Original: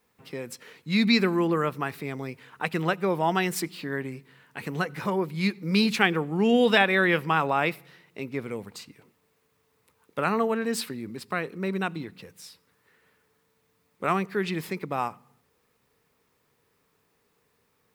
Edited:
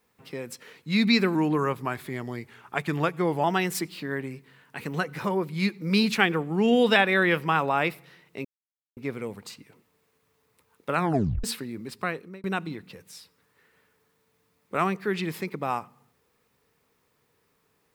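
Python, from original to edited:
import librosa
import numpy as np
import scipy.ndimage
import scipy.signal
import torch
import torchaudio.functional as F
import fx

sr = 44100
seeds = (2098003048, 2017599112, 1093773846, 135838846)

y = fx.edit(x, sr, fx.speed_span(start_s=1.35, length_s=1.9, speed=0.91),
    fx.insert_silence(at_s=8.26, length_s=0.52),
    fx.tape_stop(start_s=10.26, length_s=0.47),
    fx.fade_out_span(start_s=11.37, length_s=0.36), tone=tone)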